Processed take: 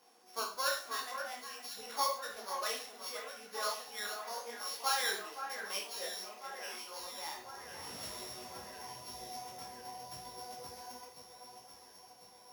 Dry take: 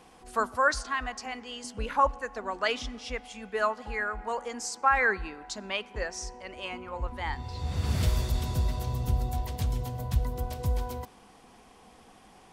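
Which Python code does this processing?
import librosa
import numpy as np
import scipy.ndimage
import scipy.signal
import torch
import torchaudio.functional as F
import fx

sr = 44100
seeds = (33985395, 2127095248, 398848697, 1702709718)

y = np.r_[np.sort(x[:len(x) // 8 * 8].reshape(-1, 8), axis=1).ravel(), x[len(x) // 8 * 8:]]
y = scipy.signal.sosfilt(scipy.signal.butter(2, 370.0, 'highpass', fs=sr, output='sos'), y)
y = fx.high_shelf(y, sr, hz=5400.0, db=4.5)
y = fx.echo_alternate(y, sr, ms=524, hz=2300.0, feedback_pct=76, wet_db=-7.5)
y = fx.rev_schroeder(y, sr, rt60_s=0.33, comb_ms=31, drr_db=3.5)
y = fx.detune_double(y, sr, cents=30)
y = y * 10.0 ** (-7.5 / 20.0)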